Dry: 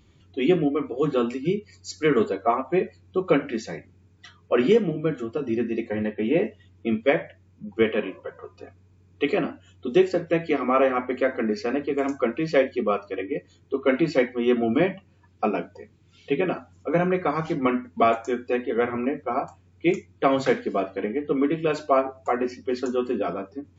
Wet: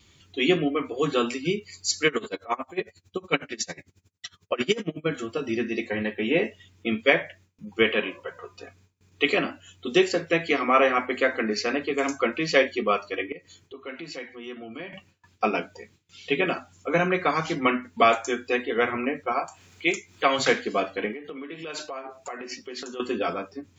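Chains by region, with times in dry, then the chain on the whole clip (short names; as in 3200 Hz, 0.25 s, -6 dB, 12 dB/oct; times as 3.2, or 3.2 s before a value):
2.07–5.06 tone controls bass +2 dB, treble +5 dB + dB-linear tremolo 11 Hz, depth 25 dB
13.32–14.93 notch 3700 Hz, Q 26 + compressor 2:1, threshold -47 dBFS
19.32–20.39 low shelf 320 Hz -9.5 dB + upward compressor, threshold -41 dBFS
21.13–23 bell 98 Hz -10.5 dB 1.1 oct + compressor 10:1, threshold -32 dBFS
whole clip: tilt shelf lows -3.5 dB, about 870 Hz; gate with hold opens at -51 dBFS; high shelf 2300 Hz +9 dB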